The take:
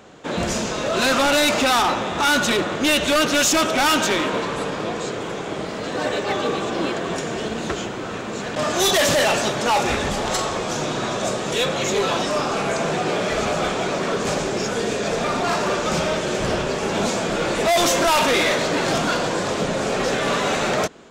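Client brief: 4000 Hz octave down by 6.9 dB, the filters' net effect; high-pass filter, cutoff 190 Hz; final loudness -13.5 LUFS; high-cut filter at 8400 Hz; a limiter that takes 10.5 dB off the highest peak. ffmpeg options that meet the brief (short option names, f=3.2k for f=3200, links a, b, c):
-af "highpass=190,lowpass=8.4k,equalizer=f=4k:t=o:g=-9,volume=15.5dB,alimiter=limit=-6dB:level=0:latency=1"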